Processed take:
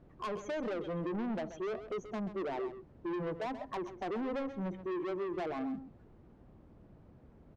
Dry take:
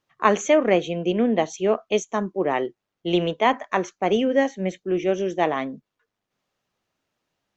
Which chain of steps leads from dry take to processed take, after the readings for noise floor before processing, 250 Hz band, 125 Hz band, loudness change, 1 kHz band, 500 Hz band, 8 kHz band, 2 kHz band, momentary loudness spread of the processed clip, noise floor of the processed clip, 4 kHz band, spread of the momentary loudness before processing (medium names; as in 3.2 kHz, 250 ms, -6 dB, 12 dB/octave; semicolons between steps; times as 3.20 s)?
-84 dBFS, -13.0 dB, -12.0 dB, -15.5 dB, -16.5 dB, -15.5 dB, no reading, -18.0 dB, 4 LU, -60 dBFS, -20.5 dB, 8 LU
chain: spectral contrast enhancement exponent 1.7; compression 5:1, threshold -23 dBFS, peak gain reduction 10 dB; companded quantiser 6-bit; added noise brown -48 dBFS; band-pass filter 270 Hz, Q 0.52; saturation -34 dBFS, distortion -7 dB; delay 132 ms -12 dB